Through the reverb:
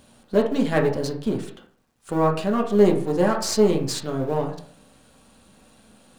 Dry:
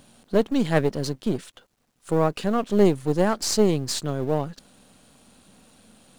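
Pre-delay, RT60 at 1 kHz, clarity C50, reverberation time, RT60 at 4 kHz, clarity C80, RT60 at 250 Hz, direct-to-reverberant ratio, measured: 5 ms, 0.50 s, 8.0 dB, 0.55 s, 0.35 s, 13.0 dB, 0.60 s, 0.0 dB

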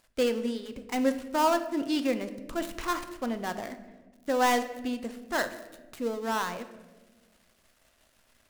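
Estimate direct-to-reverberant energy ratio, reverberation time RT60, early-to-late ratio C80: 9.0 dB, 1.4 s, 14.0 dB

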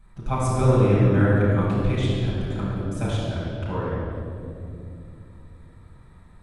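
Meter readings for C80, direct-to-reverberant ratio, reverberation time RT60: -1.5 dB, -9.5 dB, 2.7 s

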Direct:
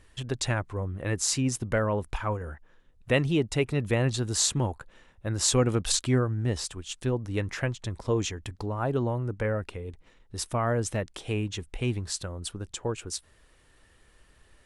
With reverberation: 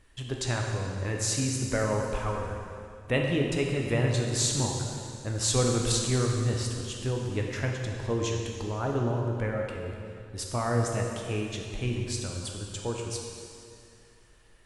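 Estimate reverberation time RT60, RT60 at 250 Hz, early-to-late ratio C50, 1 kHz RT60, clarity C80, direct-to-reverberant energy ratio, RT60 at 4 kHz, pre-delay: 2.5 s, 2.4 s, 1.5 dB, 2.4 s, 3.0 dB, 0.0 dB, 2.3 s, 6 ms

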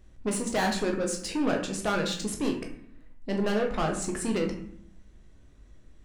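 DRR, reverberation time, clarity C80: 1.5 dB, 0.65 s, 11.0 dB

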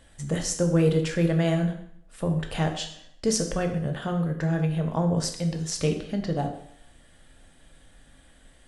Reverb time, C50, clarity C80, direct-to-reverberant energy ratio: 0.70 s, 8.5 dB, 11.0 dB, 3.5 dB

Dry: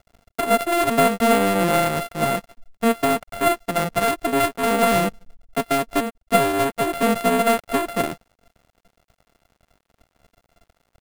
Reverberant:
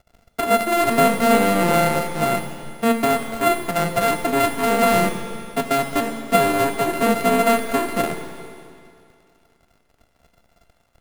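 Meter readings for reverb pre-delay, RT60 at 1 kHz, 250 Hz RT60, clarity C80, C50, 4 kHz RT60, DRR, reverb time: 14 ms, 2.4 s, 2.4 s, 7.0 dB, 6.0 dB, 2.3 s, 5.0 dB, 2.4 s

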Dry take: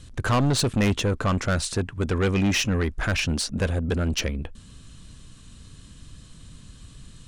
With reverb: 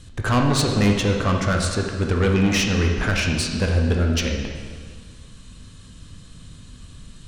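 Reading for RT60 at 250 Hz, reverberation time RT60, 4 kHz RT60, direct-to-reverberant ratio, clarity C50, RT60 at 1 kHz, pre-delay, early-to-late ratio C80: 1.8 s, 1.8 s, 1.7 s, 1.0 dB, 3.0 dB, 1.8 s, 8 ms, 5.0 dB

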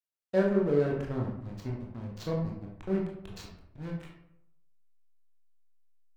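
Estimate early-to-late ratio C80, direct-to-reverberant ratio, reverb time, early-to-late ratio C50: 7.0 dB, -2.5 dB, 0.80 s, 3.5 dB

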